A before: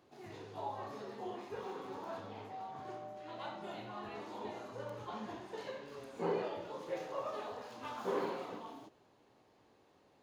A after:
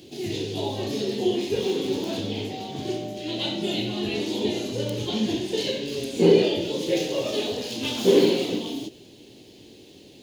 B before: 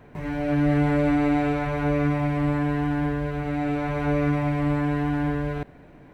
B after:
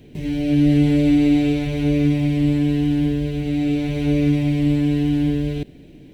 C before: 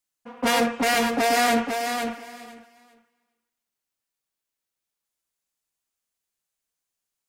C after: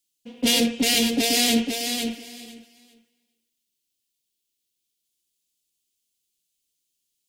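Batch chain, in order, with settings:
EQ curve 120 Hz 0 dB, 350 Hz +3 dB, 1200 Hz -23 dB, 3100 Hz +7 dB, 5900 Hz +5 dB; normalise peaks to -6 dBFS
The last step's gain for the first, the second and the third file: +20.0, +4.5, +2.0 dB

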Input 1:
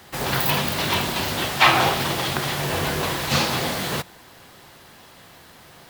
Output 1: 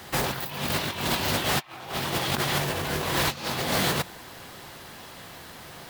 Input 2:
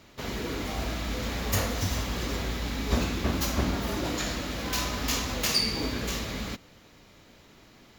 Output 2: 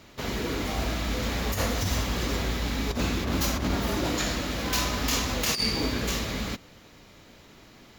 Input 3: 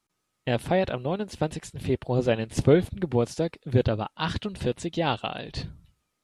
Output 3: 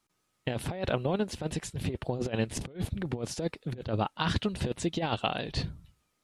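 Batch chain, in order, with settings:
negative-ratio compressor -27 dBFS, ratio -0.5; normalise peaks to -12 dBFS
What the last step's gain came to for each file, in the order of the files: -0.5, +2.5, -2.0 dB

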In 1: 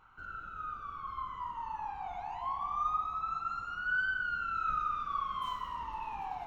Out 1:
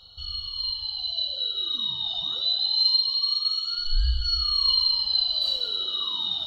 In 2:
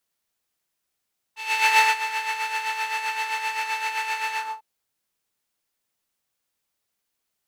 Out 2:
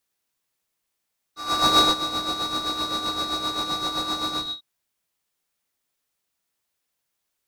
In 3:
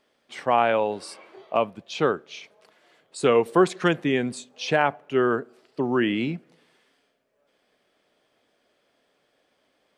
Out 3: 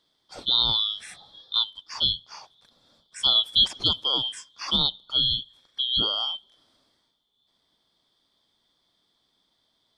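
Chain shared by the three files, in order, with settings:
four-band scrambler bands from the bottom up 2413; match loudness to -23 LUFS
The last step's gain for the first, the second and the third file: +11.0, +0.5, -2.5 dB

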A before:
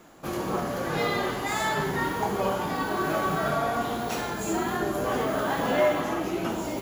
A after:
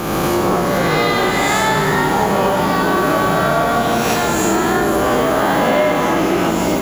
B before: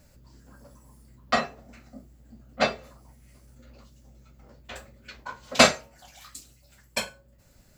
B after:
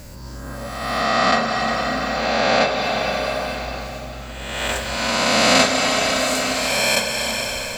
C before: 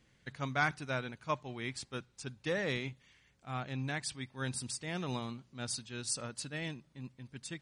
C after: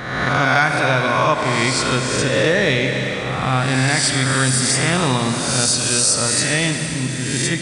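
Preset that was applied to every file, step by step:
spectral swells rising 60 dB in 1.19 s; Schroeder reverb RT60 3.4 s, combs from 31 ms, DRR 5.5 dB; compressor 3:1, threshold -34 dBFS; normalise peaks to -2 dBFS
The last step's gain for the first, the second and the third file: +18.0, +15.5, +20.0 dB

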